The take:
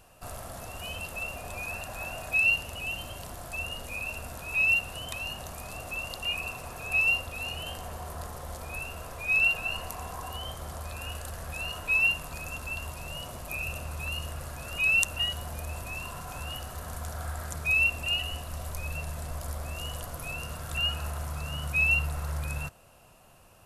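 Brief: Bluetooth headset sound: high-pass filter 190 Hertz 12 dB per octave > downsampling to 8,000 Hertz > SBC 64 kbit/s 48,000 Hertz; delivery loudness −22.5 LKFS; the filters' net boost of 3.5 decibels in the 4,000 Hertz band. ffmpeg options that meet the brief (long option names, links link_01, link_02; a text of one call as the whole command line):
ffmpeg -i in.wav -af "highpass=190,equalizer=frequency=4000:width_type=o:gain=6.5,aresample=8000,aresample=44100,volume=3.5dB" -ar 48000 -c:a sbc -b:a 64k out.sbc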